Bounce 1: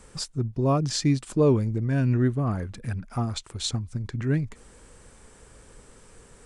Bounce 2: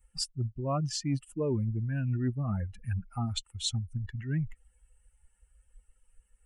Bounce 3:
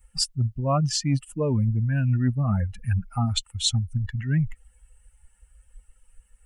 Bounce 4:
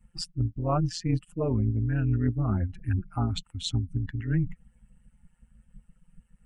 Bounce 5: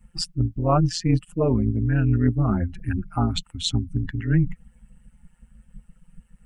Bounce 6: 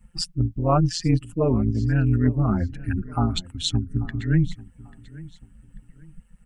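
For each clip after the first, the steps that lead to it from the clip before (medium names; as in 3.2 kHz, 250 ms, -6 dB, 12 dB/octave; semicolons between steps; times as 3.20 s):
expander on every frequency bin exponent 2; reverse; compression 6:1, threshold -33 dBFS, peak gain reduction 14 dB; reverse; trim +5 dB
peaking EQ 360 Hz -12.5 dB 0.4 oct; trim +8.5 dB
low-pass 2.3 kHz 6 dB/octave; AM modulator 170 Hz, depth 50%
peaking EQ 100 Hz -14 dB 0.22 oct; trim +7 dB
feedback delay 840 ms, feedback 30%, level -20 dB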